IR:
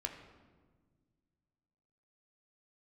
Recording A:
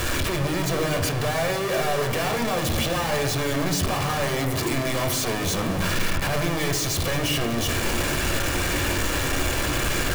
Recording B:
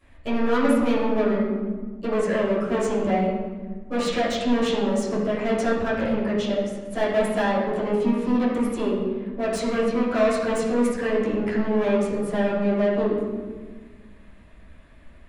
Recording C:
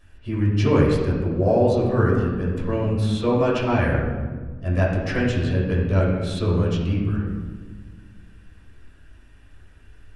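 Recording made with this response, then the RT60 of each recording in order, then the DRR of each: A; 1.5, 1.5, 1.5 seconds; 2.5, −13.5, −7.0 decibels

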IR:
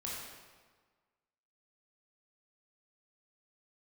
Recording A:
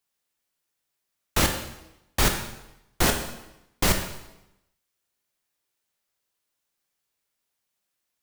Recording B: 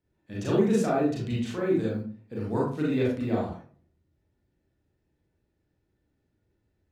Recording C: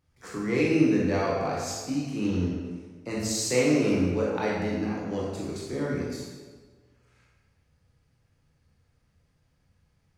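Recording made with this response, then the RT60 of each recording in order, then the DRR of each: C; 0.90, 0.45, 1.5 seconds; 4.0, −6.0, −5.5 decibels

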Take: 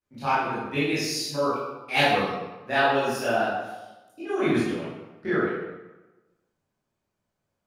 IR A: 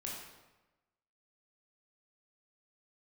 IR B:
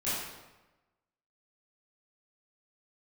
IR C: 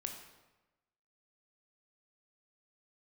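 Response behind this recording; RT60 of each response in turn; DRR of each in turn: B; 1.1, 1.1, 1.1 seconds; −3.5, −13.0, 3.5 decibels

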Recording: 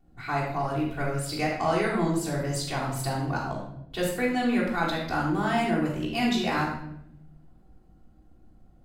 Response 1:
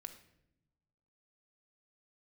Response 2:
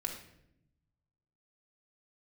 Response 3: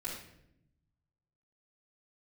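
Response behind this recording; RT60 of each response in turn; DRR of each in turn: 3; non-exponential decay, 0.75 s, 0.75 s; 6.0, 0.0, −9.0 decibels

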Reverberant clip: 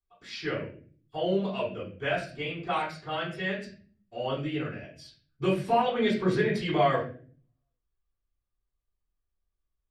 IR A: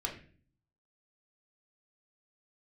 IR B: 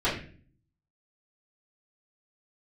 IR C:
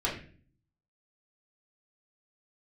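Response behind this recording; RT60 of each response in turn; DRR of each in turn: B; 0.45, 0.45, 0.45 seconds; −1.0, −14.0, −6.5 decibels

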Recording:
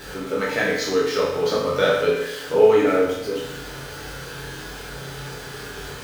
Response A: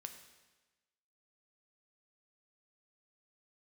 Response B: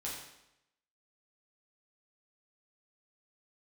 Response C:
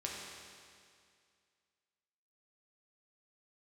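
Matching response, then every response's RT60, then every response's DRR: B; 1.2, 0.85, 2.2 seconds; 6.0, −6.0, −3.5 decibels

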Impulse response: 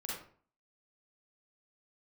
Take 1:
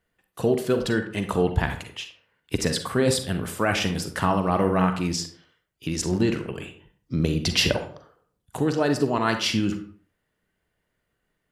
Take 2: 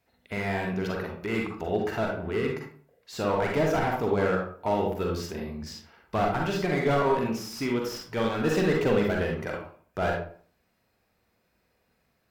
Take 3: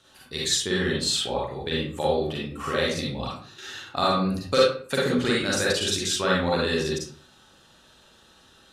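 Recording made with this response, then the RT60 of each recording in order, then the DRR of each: 3; 0.50, 0.50, 0.50 seconds; 7.0, −0.5, −5.5 decibels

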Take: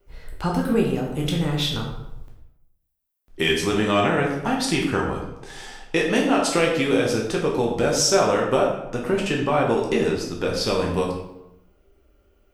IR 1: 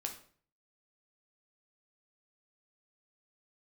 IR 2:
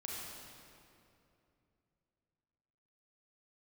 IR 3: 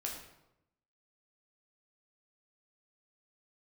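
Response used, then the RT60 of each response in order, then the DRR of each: 3; 0.50, 2.7, 0.90 seconds; 2.5, −4.5, −1.5 decibels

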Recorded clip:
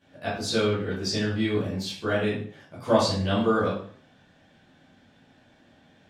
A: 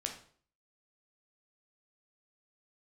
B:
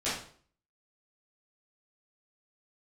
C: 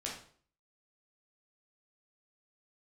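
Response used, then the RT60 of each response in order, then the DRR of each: B; 0.50, 0.50, 0.50 seconds; 2.0, −13.0, −4.0 decibels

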